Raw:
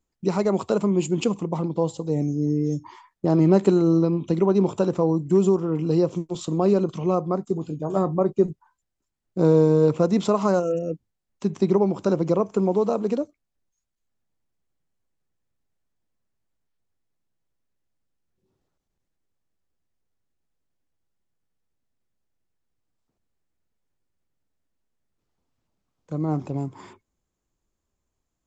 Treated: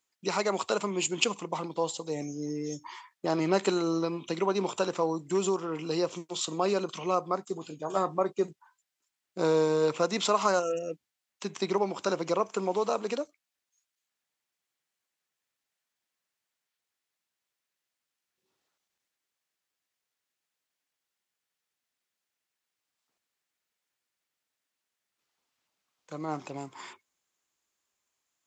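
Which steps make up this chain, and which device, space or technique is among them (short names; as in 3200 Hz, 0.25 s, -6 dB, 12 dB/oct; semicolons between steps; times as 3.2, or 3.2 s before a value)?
filter by subtraction (in parallel: LPF 2400 Hz 12 dB/oct + phase invert); on the sum: gain +4.5 dB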